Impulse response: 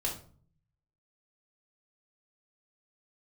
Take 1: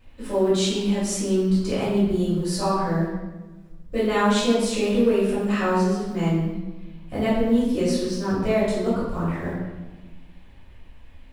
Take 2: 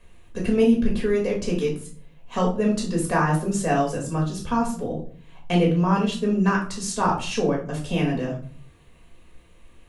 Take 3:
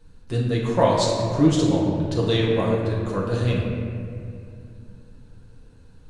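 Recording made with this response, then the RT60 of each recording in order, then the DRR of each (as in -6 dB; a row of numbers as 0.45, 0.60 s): 2; 1.2, 0.45, 2.4 s; -10.5, -2.5, -5.5 dB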